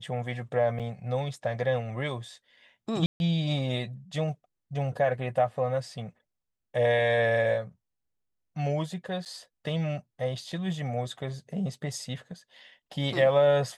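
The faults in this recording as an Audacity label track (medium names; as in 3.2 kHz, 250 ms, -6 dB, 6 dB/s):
0.790000	0.800000	dropout 7.3 ms
3.060000	3.200000	dropout 141 ms
9.250000	9.260000	dropout 8.5 ms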